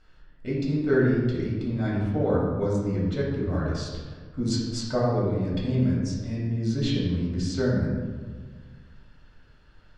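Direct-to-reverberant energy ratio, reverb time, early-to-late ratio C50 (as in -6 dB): -6.5 dB, 1.6 s, 0.0 dB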